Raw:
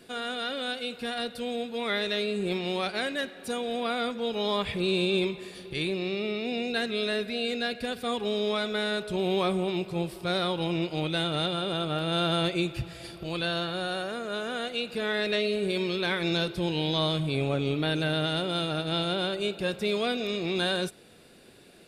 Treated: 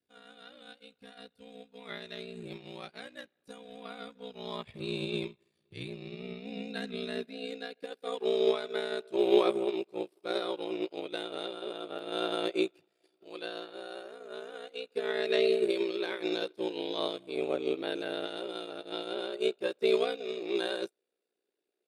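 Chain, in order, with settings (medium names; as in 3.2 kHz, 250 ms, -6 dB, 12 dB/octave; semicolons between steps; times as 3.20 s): ring modulator 30 Hz; high-pass sweep 74 Hz -> 390 Hz, 5.20–7.93 s; upward expansion 2.5:1, over -45 dBFS; trim +3.5 dB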